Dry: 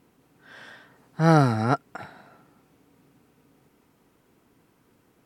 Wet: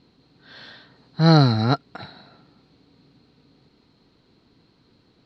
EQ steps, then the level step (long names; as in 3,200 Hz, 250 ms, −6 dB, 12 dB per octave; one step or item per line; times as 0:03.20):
low-pass with resonance 4,200 Hz, resonance Q 12
low-shelf EQ 370 Hz +8 dB
−2.0 dB